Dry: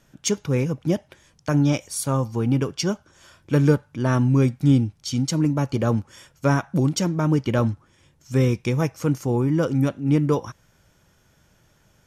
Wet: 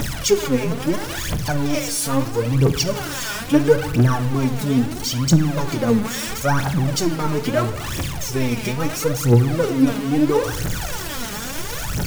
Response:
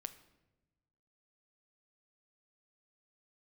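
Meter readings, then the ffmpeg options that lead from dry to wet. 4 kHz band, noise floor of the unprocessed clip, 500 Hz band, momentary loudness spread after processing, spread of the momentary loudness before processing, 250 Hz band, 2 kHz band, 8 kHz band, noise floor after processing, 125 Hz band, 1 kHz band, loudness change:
+8.5 dB, -61 dBFS, +4.5 dB, 9 LU, 7 LU, +2.0 dB, +7.0 dB, +7.0 dB, -28 dBFS, +1.0 dB, +5.0 dB, +2.0 dB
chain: -filter_complex "[0:a]aeval=exprs='val(0)+0.5*0.0841*sgn(val(0))':c=same,aphaser=in_gain=1:out_gain=1:delay=5:decay=0.77:speed=0.75:type=triangular[a];[1:a]atrim=start_sample=2205[b];[a][b]afir=irnorm=-1:irlink=0"

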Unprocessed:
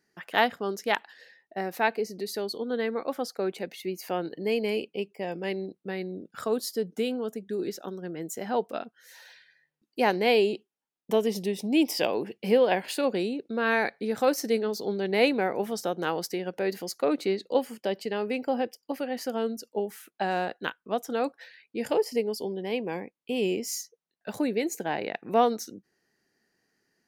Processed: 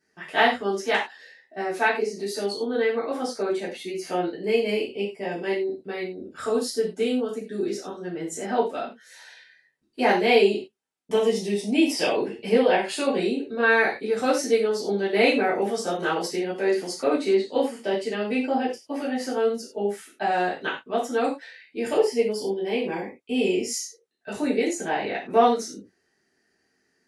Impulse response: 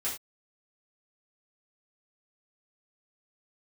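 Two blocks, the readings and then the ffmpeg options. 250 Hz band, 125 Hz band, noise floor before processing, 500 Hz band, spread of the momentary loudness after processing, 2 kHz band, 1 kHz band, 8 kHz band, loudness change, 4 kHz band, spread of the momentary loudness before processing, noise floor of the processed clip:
+3.5 dB, +1.0 dB, -82 dBFS, +4.0 dB, 12 LU, +6.0 dB, +4.0 dB, +4.0 dB, +4.0 dB, +3.5 dB, 11 LU, -71 dBFS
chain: -filter_complex "[1:a]atrim=start_sample=2205[a];[0:a][a]afir=irnorm=-1:irlink=0" -ar 24000 -c:a aac -b:a 64k

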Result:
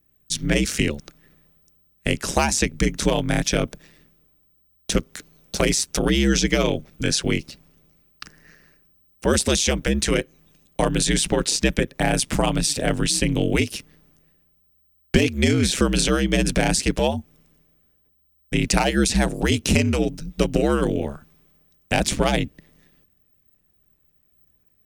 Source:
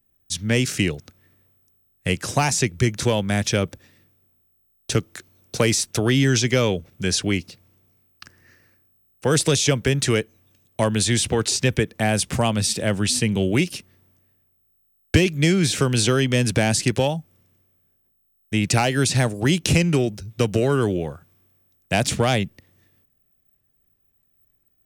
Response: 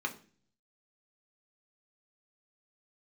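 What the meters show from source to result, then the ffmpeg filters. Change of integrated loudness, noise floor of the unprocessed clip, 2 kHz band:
-0.5 dB, -67 dBFS, 0.0 dB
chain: -filter_complex "[0:a]asplit=2[a][b];[b]acompressor=threshold=-26dB:ratio=6,volume=0.5dB[c];[a][c]amix=inputs=2:normalize=0,aeval=exprs='val(0)*sin(2*PI*70*n/s)':c=same"

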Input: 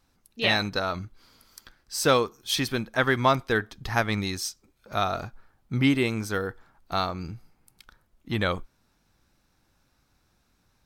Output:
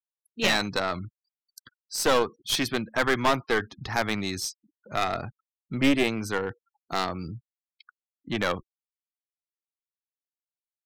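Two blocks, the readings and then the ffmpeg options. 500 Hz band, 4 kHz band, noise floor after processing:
-0.5 dB, 0.0 dB, under -85 dBFS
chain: -filter_complex "[0:a]highpass=110,afftfilt=real='re*gte(hypot(re,im),0.00631)':imag='im*gte(hypot(re,im),0.00631)':win_size=1024:overlap=0.75,lowshelf=f=170:g=10.5,acrossover=split=220|4800[a][b][c];[a]alimiter=level_in=9.5dB:limit=-24dB:level=0:latency=1,volume=-9.5dB[d];[b]volume=16.5dB,asoftclip=hard,volume=-16.5dB[e];[d][e][c]amix=inputs=3:normalize=0,aeval=exprs='0.211*(cos(1*acos(clip(val(0)/0.211,-1,1)))-cos(1*PI/2))+0.0841*(cos(2*acos(clip(val(0)/0.211,-1,1)))-cos(2*PI/2))+0.00531*(cos(8*acos(clip(val(0)/0.211,-1,1)))-cos(8*PI/2))':c=same"

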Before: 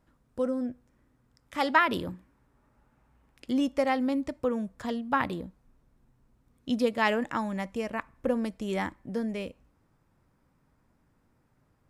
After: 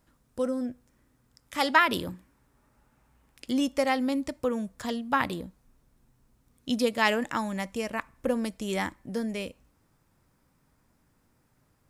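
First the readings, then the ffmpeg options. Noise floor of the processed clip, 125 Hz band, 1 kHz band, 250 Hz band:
-69 dBFS, 0.0 dB, +1.0 dB, 0.0 dB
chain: -af "highshelf=f=3.4k:g=10.5"

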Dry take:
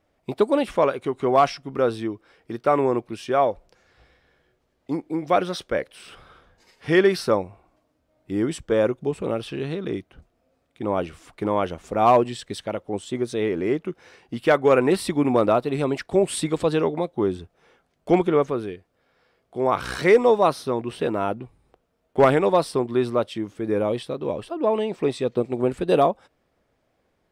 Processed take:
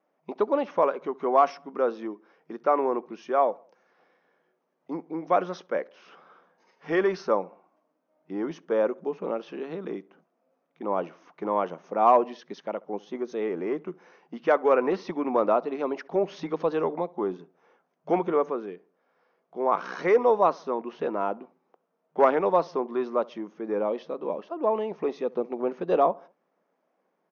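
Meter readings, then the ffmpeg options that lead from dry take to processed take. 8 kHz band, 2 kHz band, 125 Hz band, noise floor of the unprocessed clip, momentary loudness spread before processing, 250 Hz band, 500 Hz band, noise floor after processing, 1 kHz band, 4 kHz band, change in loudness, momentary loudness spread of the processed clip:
under -15 dB, -6.5 dB, -14.5 dB, -70 dBFS, 13 LU, -7.5 dB, -4.0 dB, -75 dBFS, -2.0 dB, under -10 dB, -4.0 dB, 15 LU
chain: -filter_complex "[0:a]asplit=2[a][b];[b]adelay=68,lowpass=f=2k:p=1,volume=-23.5dB,asplit=2[c][d];[d]adelay=68,lowpass=f=2k:p=1,volume=0.49,asplit=2[e][f];[f]adelay=68,lowpass=f=2k:p=1,volume=0.49[g];[a][c][e][g]amix=inputs=4:normalize=0,afftfilt=real='re*between(b*sr/4096,160,6600)':imag='im*between(b*sr/4096,160,6600)':win_size=4096:overlap=0.75,acrossover=split=360|1100[h][i][j];[h]asoftclip=type=tanh:threshold=-22dB[k];[k][i][j]amix=inputs=3:normalize=0,equalizer=f=500:t=o:w=1:g=3,equalizer=f=1k:t=o:w=1:g=7,equalizer=f=4k:t=o:w=1:g=-8,volume=-7.5dB"

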